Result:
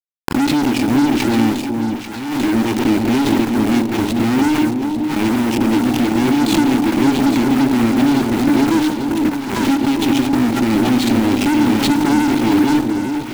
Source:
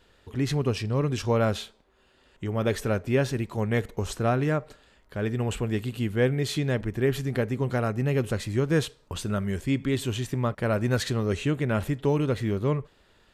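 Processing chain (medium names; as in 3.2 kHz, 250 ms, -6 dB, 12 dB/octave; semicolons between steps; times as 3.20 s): Chebyshev shaper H 3 -18 dB, 5 -32 dB, 7 -43 dB, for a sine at -10.5 dBFS; ten-band graphic EQ 250 Hz +8 dB, 1 kHz -9 dB, 4 kHz +11 dB; in parallel at -2.5 dB: compression 6:1, threshold -31 dBFS, peak gain reduction 14 dB; on the sum: de-hum 51.18 Hz, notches 13; 9.29–10.02 s: power-law waveshaper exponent 2; vowel filter u; fuzz box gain 42 dB, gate -44 dBFS; bit crusher 5-bit; echo whose repeats swap between lows and highs 420 ms, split 890 Hz, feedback 71%, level -5 dB; on a send at -17 dB: reverberation RT60 0.95 s, pre-delay 27 ms; on the sum: swell ahead of each attack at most 46 dB/s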